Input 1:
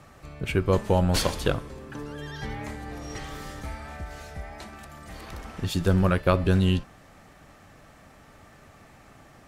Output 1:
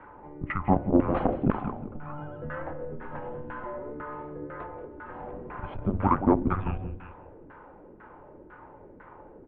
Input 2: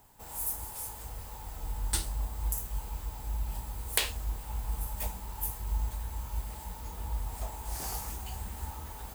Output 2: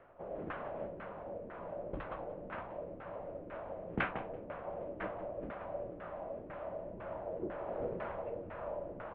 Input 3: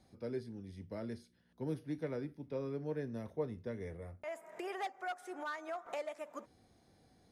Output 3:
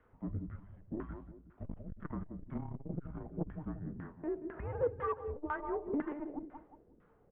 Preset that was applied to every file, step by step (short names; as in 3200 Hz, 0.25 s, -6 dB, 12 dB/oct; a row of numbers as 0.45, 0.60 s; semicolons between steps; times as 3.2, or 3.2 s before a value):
CVSD 64 kbps; feedback echo 0.18 s, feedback 33%, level -8.5 dB; LFO low-pass saw down 2 Hz 560–1800 Hz; mistuned SSB -290 Hz 260–3300 Hz; core saturation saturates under 300 Hz; gain +1.5 dB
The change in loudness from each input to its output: -3.5, -6.5, +2.0 LU